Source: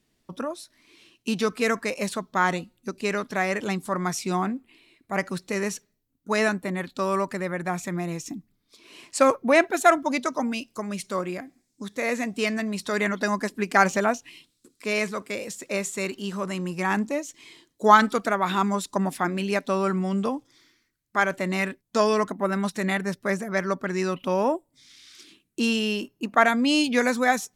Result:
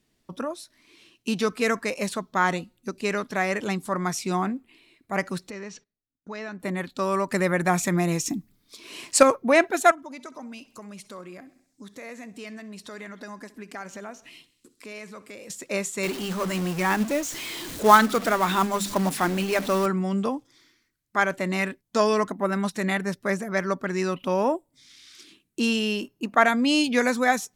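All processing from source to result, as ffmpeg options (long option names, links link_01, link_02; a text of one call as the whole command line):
ffmpeg -i in.wav -filter_complex "[0:a]asettb=1/sr,asplit=3[link_01][link_02][link_03];[link_01]atrim=end=5.504[link_04];[link_02]atrim=start=5.5:end=6.6,asetpts=PTS-STARTPTS,afade=type=in:duration=0.004:curve=qsin,afade=type=out:start_time=1.096:duration=0.004:curve=qsin,agate=range=-17dB:threshold=-56dB:ratio=16:release=100:detection=peak,lowpass=frequency=5800:width=0.5412,lowpass=frequency=5800:width=1.3066,acompressor=threshold=-38dB:ratio=2.5:attack=3.2:release=140:knee=1:detection=peak[link_05];[link_03]atrim=start=6.596[link_06];[link_04][link_05]acrossfade=duration=0.004:curve1=hsin:curve2=qsin[link_07];[link_07][link_06]acrossfade=duration=0.004:curve1=qsin:curve2=hsin,asettb=1/sr,asplit=3[link_08][link_09][link_10];[link_08]atrim=end=7.324[link_11];[link_09]atrim=start=7.32:end=9.23,asetpts=PTS-STARTPTS,afade=type=in:duration=0.004:curve=qsin,afade=type=out:start_time=1.906:duration=0.004:curve=qsin,highshelf=frequency=5200:gain=5,acontrast=53[link_12];[link_10]atrim=start=9.226[link_13];[link_11][link_12]acrossfade=duration=0.004:curve1=hsin:curve2=qsin[link_14];[link_14][link_13]acrossfade=duration=0.004:curve1=qsin:curve2=hsin,asettb=1/sr,asplit=3[link_15][link_16][link_17];[link_15]atrim=end=9.914[link_18];[link_16]atrim=start=9.91:end=15.5,asetpts=PTS-STARTPTS,afade=type=in:duration=0.004:curve=qsin,afade=type=out:start_time=5.586:duration=0.004:curve=qsin,acompressor=threshold=-43dB:ratio=2.5:attack=3.2:release=140:knee=1:detection=peak,aecho=1:1:65|130|195|260|325:0.112|0.064|0.0365|0.0208|0.0118,atrim=end_sample=246519[link_19];[link_17]atrim=start=15.496[link_20];[link_18][link_19]acrossfade=duration=0.004:curve1=hsin:curve2=qsin[link_21];[link_21][link_20]acrossfade=duration=0.004:curve1=qsin:curve2=hsin,asettb=1/sr,asplit=3[link_22][link_23][link_24];[link_22]atrim=end=16.034[link_25];[link_23]atrim=start=16.03:end=19.86,asetpts=PTS-STARTPTS,afade=type=in:duration=0.004:curve=qsin,afade=type=out:start_time=3.826:duration=0.004:curve=qsin,aeval=exprs='val(0)+0.5*0.0316*sgn(val(0))':channel_layout=same,bandreject=frequency=50:width_type=h:width=6,bandreject=frequency=100:width_type=h:width=6,bandreject=frequency=150:width_type=h:width=6,bandreject=frequency=200:width_type=h:width=6,bandreject=frequency=250:width_type=h:width=6,acrusher=bits=4:mode=log:mix=0:aa=0.000001[link_26];[link_24]atrim=start=19.856[link_27];[link_25][link_26]acrossfade=duration=0.004:curve1=hsin:curve2=qsin[link_28];[link_28][link_27]acrossfade=duration=0.004:curve1=qsin:curve2=hsin" out.wav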